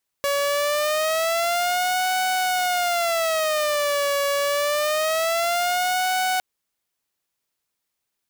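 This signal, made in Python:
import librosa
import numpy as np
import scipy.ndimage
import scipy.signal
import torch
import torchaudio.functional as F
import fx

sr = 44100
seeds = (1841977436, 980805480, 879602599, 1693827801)

y = fx.siren(sr, length_s=6.16, kind='wail', low_hz=565.0, high_hz=744.0, per_s=0.25, wave='saw', level_db=-17.5)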